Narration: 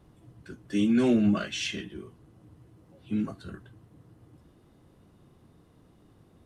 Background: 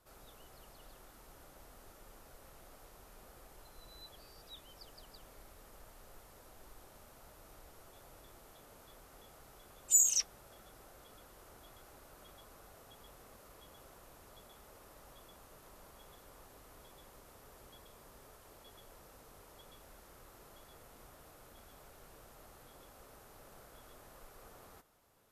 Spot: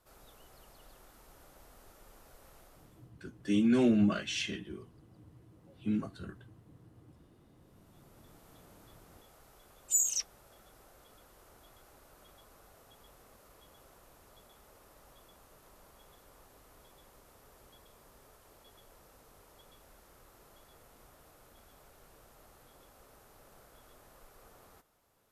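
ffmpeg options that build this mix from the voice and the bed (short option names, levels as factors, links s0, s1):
-filter_complex "[0:a]adelay=2750,volume=0.708[s0];[1:a]volume=11.2,afade=t=out:st=2.59:d=0.52:silence=0.0707946,afade=t=in:st=7.55:d=0.93:silence=0.0841395[s1];[s0][s1]amix=inputs=2:normalize=0"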